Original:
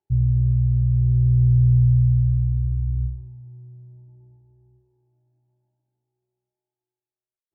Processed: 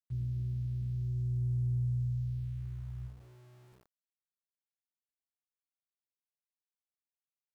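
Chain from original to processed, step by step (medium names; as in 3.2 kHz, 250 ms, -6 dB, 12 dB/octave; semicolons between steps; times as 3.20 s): high-pass 290 Hz 6 dB/octave; small samples zeroed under -48.5 dBFS; trim -7.5 dB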